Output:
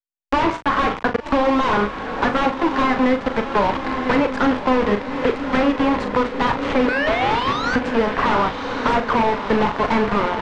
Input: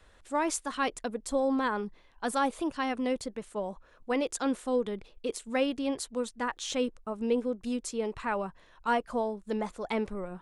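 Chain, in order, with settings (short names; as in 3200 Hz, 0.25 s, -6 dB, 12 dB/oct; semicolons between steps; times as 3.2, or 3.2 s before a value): zero-crossing step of -40 dBFS; band shelf 1400 Hz +13 dB; de-hum 60.75 Hz, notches 25; in parallel at -3 dB: vocal rider within 5 dB 0.5 s; on the sum: painted sound rise, 6.88–7.76, 480–1600 Hz -13 dBFS; bit-crush 4-bit; wrapped overs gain 16.5 dB; tape spacing loss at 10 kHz 43 dB; doubler 39 ms -9 dB; on a send: diffused feedback echo 1.103 s, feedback 60%, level -10.5 dB; on the sum: three-band squash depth 70%; gain +7 dB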